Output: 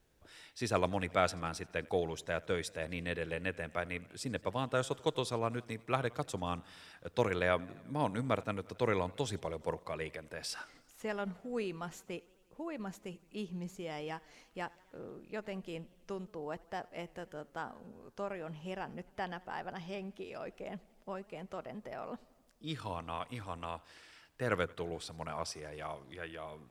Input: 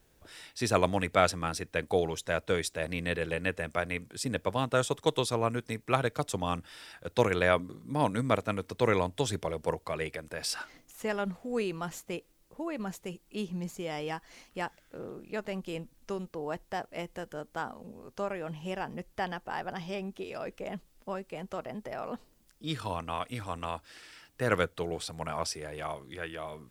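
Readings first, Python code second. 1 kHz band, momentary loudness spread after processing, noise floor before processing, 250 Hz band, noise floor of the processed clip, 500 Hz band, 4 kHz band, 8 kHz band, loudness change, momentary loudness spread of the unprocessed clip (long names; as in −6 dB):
−5.5 dB, 13 LU, −65 dBFS, −5.5 dB, −66 dBFS, −5.5 dB, −6.5 dB, −8.0 dB, −5.5 dB, 13 LU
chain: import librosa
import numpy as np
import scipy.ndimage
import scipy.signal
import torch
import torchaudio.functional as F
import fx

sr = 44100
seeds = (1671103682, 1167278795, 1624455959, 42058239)

y = fx.high_shelf(x, sr, hz=8800.0, db=-6.5)
y = fx.echo_warbled(y, sr, ms=87, feedback_pct=68, rate_hz=2.8, cents=115, wet_db=-24.0)
y = F.gain(torch.from_numpy(y), -5.5).numpy()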